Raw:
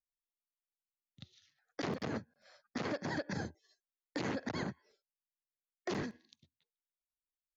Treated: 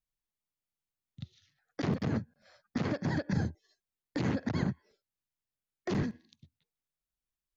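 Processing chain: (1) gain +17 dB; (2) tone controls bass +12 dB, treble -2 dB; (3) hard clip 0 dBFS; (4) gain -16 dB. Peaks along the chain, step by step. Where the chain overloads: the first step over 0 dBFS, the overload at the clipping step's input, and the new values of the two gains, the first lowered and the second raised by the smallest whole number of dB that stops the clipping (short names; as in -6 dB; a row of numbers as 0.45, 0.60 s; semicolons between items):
-9.5, -1.5, -1.5, -17.5 dBFS; no overload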